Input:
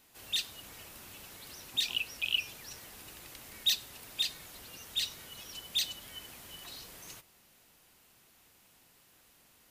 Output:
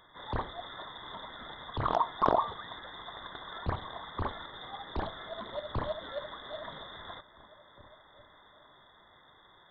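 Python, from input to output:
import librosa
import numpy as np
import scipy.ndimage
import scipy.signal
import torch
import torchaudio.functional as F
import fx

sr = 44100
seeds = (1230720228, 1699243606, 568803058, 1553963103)

p1 = fx.brickwall_bandstop(x, sr, low_hz=300.0, high_hz=1500.0)
p2 = fx.over_compress(p1, sr, threshold_db=-36.0, ratio=-0.5)
p3 = p1 + (p2 * librosa.db_to_amplitude(0.0))
p4 = fx.peak_eq(p3, sr, hz=2500.0, db=5.5, octaves=0.29)
p5 = p4 + fx.echo_stepped(p4, sr, ms=405, hz=470.0, octaves=0.7, feedback_pct=70, wet_db=-11.5, dry=0)
p6 = fx.freq_invert(p5, sr, carrier_hz=3600)
y = fx.doppler_dist(p6, sr, depth_ms=0.79)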